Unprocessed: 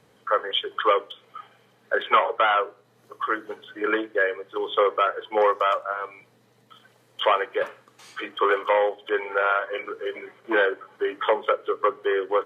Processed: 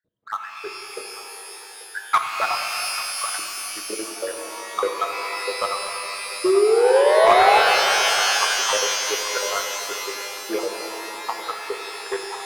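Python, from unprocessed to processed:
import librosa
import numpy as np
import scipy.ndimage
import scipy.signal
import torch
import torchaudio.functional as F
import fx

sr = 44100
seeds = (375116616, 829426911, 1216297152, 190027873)

p1 = fx.spec_dropout(x, sr, seeds[0], share_pct=79)
p2 = scipy.signal.sosfilt(scipy.signal.butter(2, 2400.0, 'lowpass', fs=sr, output='sos'), p1)
p3 = 10.0 ** (-27.0 / 20.0) * (np.abs((p2 / 10.0 ** (-27.0 / 20.0) + 3.0) % 4.0 - 2.0) - 1.0)
p4 = p2 + (p3 * 10.0 ** (-9.0 / 20.0))
p5 = fx.spec_paint(p4, sr, seeds[1], shape='rise', start_s=6.44, length_s=1.15, low_hz=360.0, high_hz=860.0, level_db=-17.0)
p6 = fx.echo_multitap(p5, sr, ms=(333, 839), db=(-19.0, -12.0))
p7 = fx.power_curve(p6, sr, exponent=1.4)
p8 = fx.rev_shimmer(p7, sr, seeds[2], rt60_s=3.6, semitones=12, shimmer_db=-2, drr_db=3.5)
y = p8 * 10.0 ** (3.5 / 20.0)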